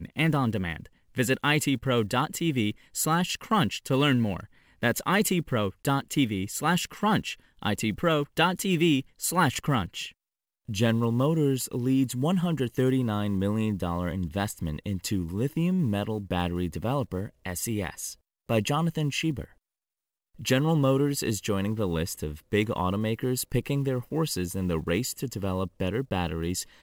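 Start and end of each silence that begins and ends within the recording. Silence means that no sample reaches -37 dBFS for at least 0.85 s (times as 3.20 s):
19.44–20.40 s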